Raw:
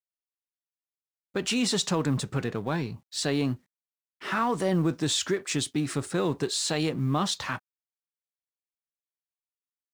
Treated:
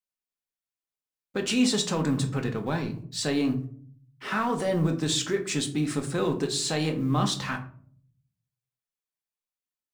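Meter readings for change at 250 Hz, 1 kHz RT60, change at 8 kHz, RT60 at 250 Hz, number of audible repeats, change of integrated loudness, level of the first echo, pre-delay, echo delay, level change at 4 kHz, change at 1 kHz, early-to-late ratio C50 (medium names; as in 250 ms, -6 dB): +2.0 dB, 0.45 s, 0.0 dB, 0.80 s, no echo, +1.0 dB, no echo, 4 ms, no echo, 0.0 dB, -0.5 dB, 12.0 dB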